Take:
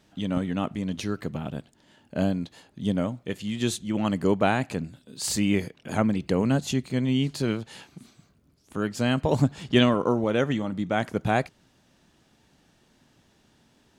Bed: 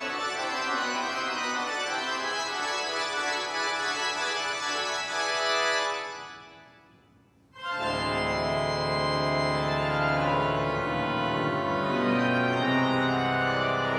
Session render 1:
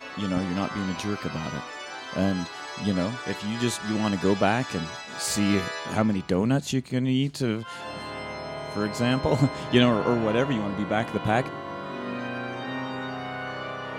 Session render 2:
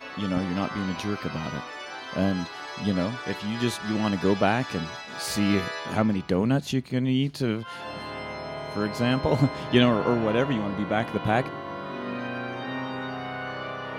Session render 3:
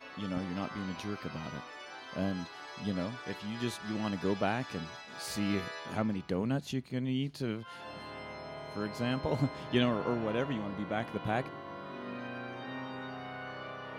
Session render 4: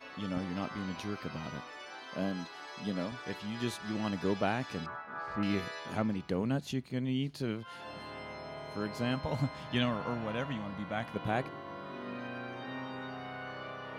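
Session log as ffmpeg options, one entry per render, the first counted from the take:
-filter_complex "[1:a]volume=0.422[s0];[0:a][s0]amix=inputs=2:normalize=0"
-af "equalizer=f=7600:w=2.3:g=-9"
-af "volume=0.355"
-filter_complex "[0:a]asettb=1/sr,asplit=3[s0][s1][s2];[s0]atrim=end=1.884[s3];[s1]atrim=start=1.88:end=3.12,asetpts=PTS-STARTPTS,afade=t=in:d=0.004:c=qsin,afade=t=out:st=1.236:d=0.004:c=qsin,highpass=150[s4];[s2]atrim=start=3.116[s5];[s3][s4]acrossfade=d=0.004:c1=hsin:c2=qsin[s6];[s6][s5]acrossfade=d=0.004:c1=qsin:c2=hsin,asettb=1/sr,asplit=3[s7][s8][s9];[s7]atrim=end=4.864[s10];[s8]atrim=start=4.86:end=5.43,asetpts=PTS-STARTPTS,afade=t=in:d=0.004:c=qsin,afade=t=out:st=0.566:d=0.004:c=qsin,lowpass=f=1300:t=q:w=3.2[s11];[s9]atrim=start=5.426[s12];[s10][s11]acrossfade=d=0.004:c1=hsin:c2=qsin[s13];[s13][s12]acrossfade=d=0.004:c1=qsin:c2=hsin,asettb=1/sr,asplit=3[s14][s15][s16];[s14]atrim=end=9.154[s17];[s15]atrim=start=9.15:end=11.16,asetpts=PTS-STARTPTS,afade=t=in:d=0.004:c=qsin,afade=t=out:st=2.006:d=0.004:c=qsin,equalizer=f=380:t=o:w=0.77:g=-10[s18];[s16]atrim=start=11.156[s19];[s17][s18]acrossfade=d=0.004:c1=hsin:c2=qsin[s20];[s20][s19]acrossfade=d=0.004:c1=qsin:c2=hsin"

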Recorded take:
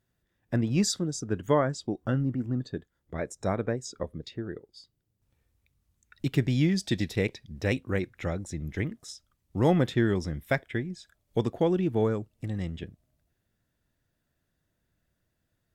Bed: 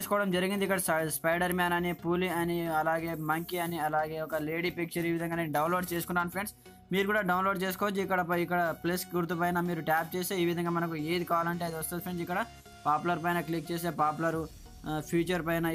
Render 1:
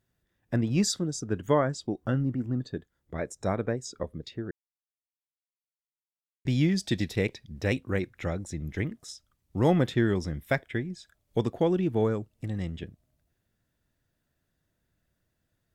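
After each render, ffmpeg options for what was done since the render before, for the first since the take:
-filter_complex "[0:a]asplit=3[s0][s1][s2];[s0]atrim=end=4.51,asetpts=PTS-STARTPTS,afade=t=out:st=4.506:d=0.004:c=hsin[s3];[s1]atrim=start=4.51:end=6.45,asetpts=PTS-STARTPTS,volume=0[s4];[s2]atrim=start=6.45,asetpts=PTS-STARTPTS,afade=t=in:d=0.004:c=hsin[s5];[s3][s4][s5]concat=n=3:v=0:a=1"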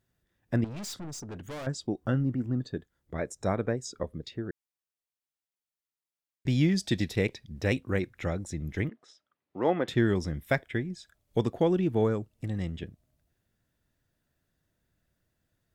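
-filter_complex "[0:a]asettb=1/sr,asplit=3[s0][s1][s2];[s0]atrim=end=0.644[s3];[s1]atrim=start=0.64:end=1.67,asetpts=PTS-STARTPTS,afade=t=in:d=0.004:c=qsin,afade=t=out:st=1.026:d=0.004:c=qsin,aeval=exprs='(tanh(70.8*val(0)+0.25)-tanh(0.25))/70.8':c=same[s4];[s2]atrim=start=1.666[s5];[s3][s4]acrossfade=d=0.004:c1=hsin:c2=qsin[s6];[s6][s5]acrossfade=d=0.004:c1=qsin:c2=hsin,asettb=1/sr,asplit=3[s7][s8][s9];[s7]atrim=end=8.894[s10];[s8]atrim=start=8.89:end=9.88,asetpts=PTS-STARTPTS,afade=t=in:d=0.004:c=qsin,afade=t=out:st=0.986:d=0.004:c=qsin,highpass=350,lowpass=2500[s11];[s9]atrim=start=9.876[s12];[s10][s11]acrossfade=d=0.004:c1=hsin:c2=qsin[s13];[s13][s12]acrossfade=d=0.004:c1=qsin:c2=hsin"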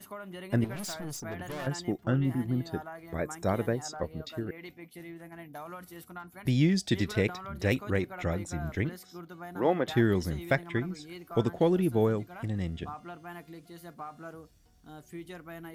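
-filter_complex "[1:a]volume=0.2[s0];[0:a][s0]amix=inputs=2:normalize=0"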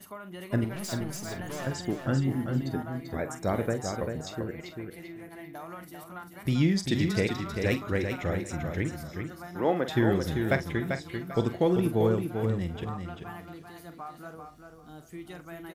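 -filter_complex "[0:a]asplit=2[s0][s1];[s1]adelay=45,volume=0.282[s2];[s0][s2]amix=inputs=2:normalize=0,aecho=1:1:392|784|1176:0.501|0.11|0.0243"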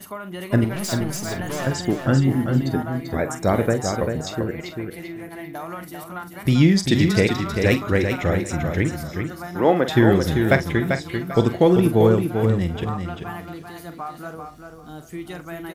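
-af "volume=2.82"

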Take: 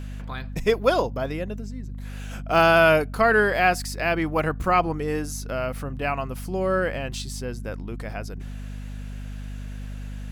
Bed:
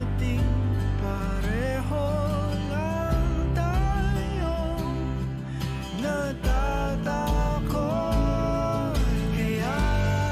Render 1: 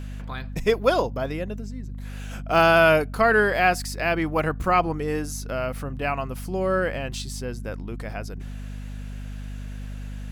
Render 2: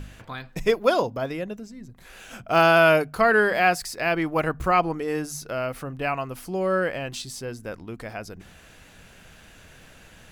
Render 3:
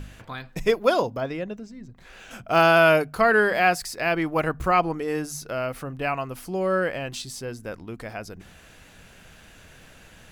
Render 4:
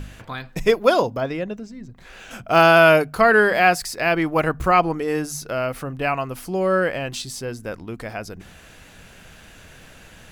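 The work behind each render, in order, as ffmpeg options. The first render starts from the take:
-af anull
-af "bandreject=f=50:t=h:w=4,bandreject=f=100:t=h:w=4,bandreject=f=150:t=h:w=4,bandreject=f=200:t=h:w=4,bandreject=f=250:t=h:w=4"
-filter_complex "[0:a]asettb=1/sr,asplit=3[s0][s1][s2];[s0]atrim=end=1.204[s3];[s1]atrim=start=1.2:end=2.31,asetpts=PTS-STARTPTS,afade=t=in:d=0.004:c=qsin,afade=t=out:st=1.106:d=0.004:c=qsin,equalizer=f=12000:t=o:w=0.86:g=-14.5[s4];[s2]atrim=start=2.306[s5];[s3][s4]acrossfade=d=0.004:c1=hsin:c2=qsin[s6];[s6][s5]acrossfade=d=0.004:c1=qsin:c2=hsin"
-af "volume=1.58"

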